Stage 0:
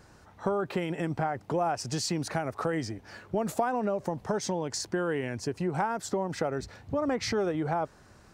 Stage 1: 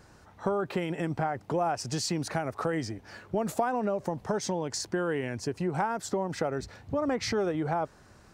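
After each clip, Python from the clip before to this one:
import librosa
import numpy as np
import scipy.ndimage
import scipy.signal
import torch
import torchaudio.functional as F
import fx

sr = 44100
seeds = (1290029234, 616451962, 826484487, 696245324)

y = x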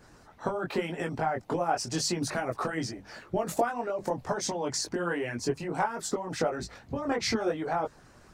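y = fx.chorus_voices(x, sr, voices=6, hz=0.82, base_ms=21, depth_ms=4.4, mix_pct=45)
y = fx.hum_notches(y, sr, base_hz=50, count=4)
y = fx.hpss(y, sr, part='harmonic', gain_db=-9)
y = y * librosa.db_to_amplitude(7.0)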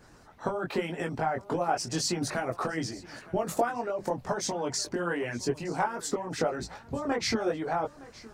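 y = x + 10.0 ** (-20.0 / 20.0) * np.pad(x, (int(915 * sr / 1000.0), 0))[:len(x)]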